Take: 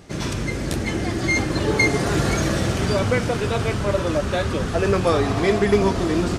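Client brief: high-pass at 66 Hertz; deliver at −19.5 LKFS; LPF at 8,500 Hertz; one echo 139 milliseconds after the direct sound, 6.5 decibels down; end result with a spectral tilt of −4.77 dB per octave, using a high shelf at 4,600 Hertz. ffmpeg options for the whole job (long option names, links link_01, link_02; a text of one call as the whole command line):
ffmpeg -i in.wav -af "highpass=66,lowpass=8500,highshelf=frequency=4600:gain=6.5,aecho=1:1:139:0.473,volume=0.5dB" out.wav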